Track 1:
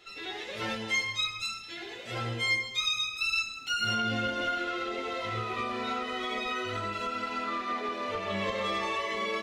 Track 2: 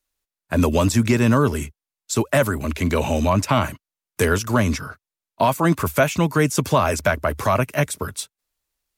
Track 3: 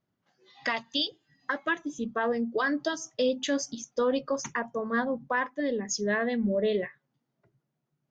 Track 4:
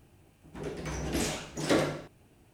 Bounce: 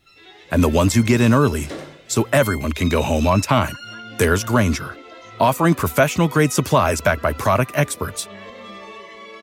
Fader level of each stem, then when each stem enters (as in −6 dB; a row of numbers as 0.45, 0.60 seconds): −7.0, +2.0, −18.5, −6.5 decibels; 0.00, 0.00, 2.25, 0.00 seconds